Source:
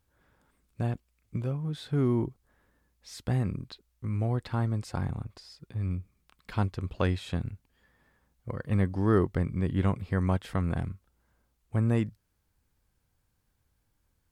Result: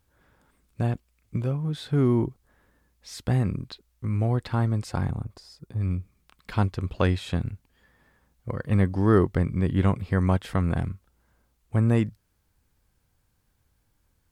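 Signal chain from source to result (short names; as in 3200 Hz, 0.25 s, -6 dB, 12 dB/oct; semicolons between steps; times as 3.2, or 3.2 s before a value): 5.11–5.81 bell 2600 Hz -8 dB 1.8 oct; gain +4.5 dB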